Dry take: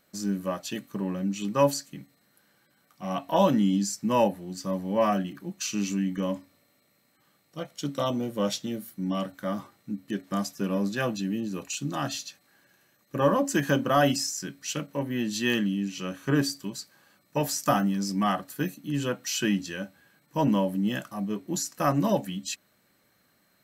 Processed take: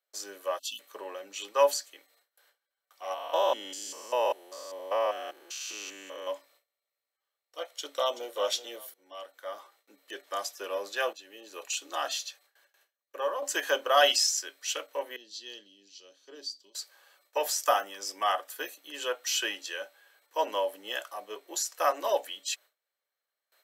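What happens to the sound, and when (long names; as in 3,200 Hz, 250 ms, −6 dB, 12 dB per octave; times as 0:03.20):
0:00.59–0:00.80: time-frequency box erased 280–2,600 Hz
0:03.14–0:06.27: spectrum averaged block by block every 200 ms
0:07.74–0:08.35: delay throw 380 ms, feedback 25%, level −12.5 dB
0:08.94–0:10.20: fade in, from −15.5 dB
0:11.13–0:11.63: fade in, from −12.5 dB
0:12.25–0:13.42: fade out, to −8.5 dB
0:13.97–0:14.40: parametric band 3,700 Hz +7 dB 1.8 octaves
0:15.16–0:16.75: drawn EQ curve 120 Hz 0 dB, 320 Hz −11 dB, 1,200 Hz −27 dB, 2,500 Hz −22 dB, 4,600 Hz −4 dB, 11,000 Hz −25 dB
0:17.64–0:18.51: notch filter 4,200 Hz, Q 7.4
whole clip: noise gate with hold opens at −53 dBFS; Butterworth high-pass 440 Hz 36 dB per octave; parametric band 3,300 Hz +5 dB 0.31 octaves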